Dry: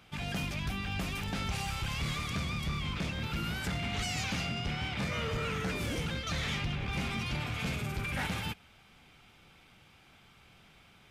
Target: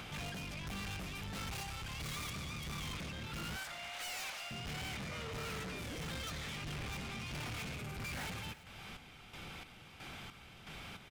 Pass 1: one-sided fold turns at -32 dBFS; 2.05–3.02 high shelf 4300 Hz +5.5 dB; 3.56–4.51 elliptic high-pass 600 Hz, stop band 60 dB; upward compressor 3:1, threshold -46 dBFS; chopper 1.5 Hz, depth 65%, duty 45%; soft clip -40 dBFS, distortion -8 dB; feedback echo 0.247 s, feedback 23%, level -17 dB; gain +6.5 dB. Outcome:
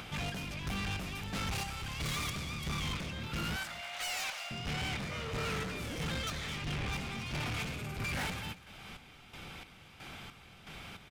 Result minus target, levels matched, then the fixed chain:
echo 88 ms early; soft clip: distortion -4 dB
one-sided fold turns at -32 dBFS; 2.05–3.02 high shelf 4300 Hz +5.5 dB; 3.56–4.51 elliptic high-pass 600 Hz, stop band 60 dB; upward compressor 3:1, threshold -46 dBFS; chopper 1.5 Hz, depth 65%, duty 45%; soft clip -47.5 dBFS, distortion -4 dB; feedback echo 0.335 s, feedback 23%, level -17 dB; gain +6.5 dB

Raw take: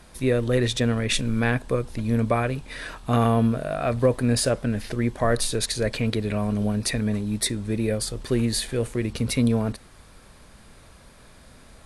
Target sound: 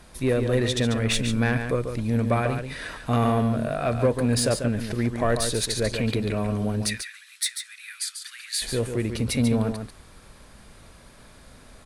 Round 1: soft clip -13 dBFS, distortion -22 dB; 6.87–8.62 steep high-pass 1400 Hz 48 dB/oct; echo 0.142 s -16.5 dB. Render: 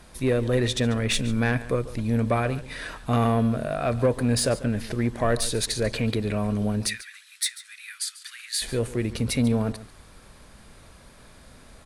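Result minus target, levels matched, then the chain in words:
echo-to-direct -9 dB
soft clip -13 dBFS, distortion -22 dB; 6.87–8.62 steep high-pass 1400 Hz 48 dB/oct; echo 0.142 s -7.5 dB

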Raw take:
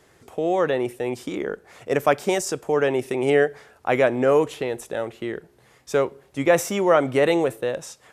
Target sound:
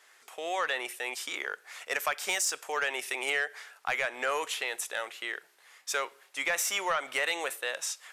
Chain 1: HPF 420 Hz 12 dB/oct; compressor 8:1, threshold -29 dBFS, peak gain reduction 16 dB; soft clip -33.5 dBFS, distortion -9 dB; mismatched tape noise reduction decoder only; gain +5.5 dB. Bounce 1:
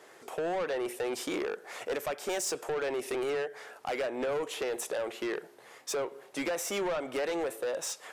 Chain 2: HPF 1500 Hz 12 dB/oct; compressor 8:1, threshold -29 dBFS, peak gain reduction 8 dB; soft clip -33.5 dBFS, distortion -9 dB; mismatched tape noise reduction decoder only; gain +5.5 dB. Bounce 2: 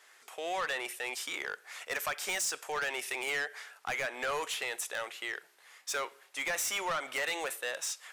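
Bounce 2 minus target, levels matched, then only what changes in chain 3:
soft clip: distortion +10 dB
change: soft clip -24 dBFS, distortion -18 dB

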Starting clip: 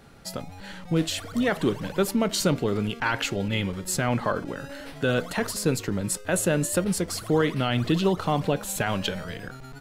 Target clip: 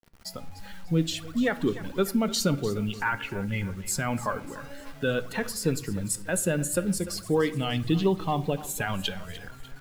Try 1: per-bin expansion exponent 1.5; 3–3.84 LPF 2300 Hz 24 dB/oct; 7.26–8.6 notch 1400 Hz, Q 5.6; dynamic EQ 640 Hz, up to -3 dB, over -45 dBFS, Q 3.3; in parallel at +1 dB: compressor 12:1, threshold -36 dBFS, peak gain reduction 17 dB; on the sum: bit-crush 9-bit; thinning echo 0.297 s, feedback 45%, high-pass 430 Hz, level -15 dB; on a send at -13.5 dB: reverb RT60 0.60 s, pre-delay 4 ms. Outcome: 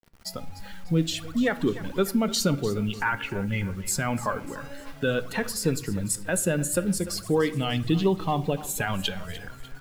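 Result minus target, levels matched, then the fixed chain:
compressor: peak gain reduction -10 dB
per-bin expansion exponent 1.5; 3–3.84 LPF 2300 Hz 24 dB/oct; 7.26–8.6 notch 1400 Hz, Q 5.6; dynamic EQ 640 Hz, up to -3 dB, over -45 dBFS, Q 3.3; in parallel at +1 dB: compressor 12:1, threshold -47 dBFS, peak gain reduction 27 dB; on the sum: bit-crush 9-bit; thinning echo 0.297 s, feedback 45%, high-pass 430 Hz, level -15 dB; on a send at -13.5 dB: reverb RT60 0.60 s, pre-delay 4 ms

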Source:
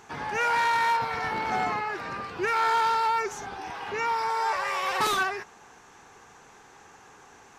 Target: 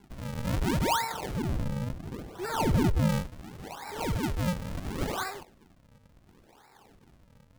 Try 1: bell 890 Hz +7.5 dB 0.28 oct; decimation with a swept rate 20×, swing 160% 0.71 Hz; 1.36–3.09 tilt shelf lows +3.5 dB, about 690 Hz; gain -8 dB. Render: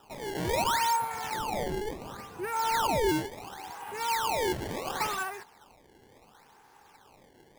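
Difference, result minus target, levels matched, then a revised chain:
decimation with a swept rate: distortion -17 dB
bell 890 Hz +7.5 dB 0.28 oct; decimation with a swept rate 70×, swing 160% 0.71 Hz; 1.36–3.09 tilt shelf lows +3.5 dB, about 690 Hz; gain -8 dB

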